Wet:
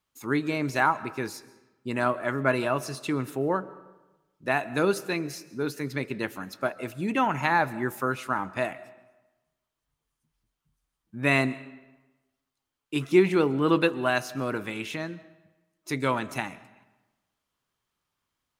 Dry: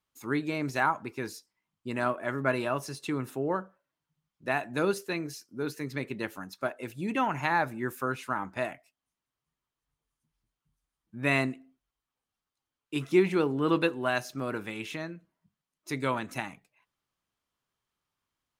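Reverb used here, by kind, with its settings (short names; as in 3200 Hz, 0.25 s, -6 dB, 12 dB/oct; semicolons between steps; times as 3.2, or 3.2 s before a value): digital reverb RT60 1.1 s, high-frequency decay 0.75×, pre-delay 95 ms, DRR 18.5 dB; gain +3.5 dB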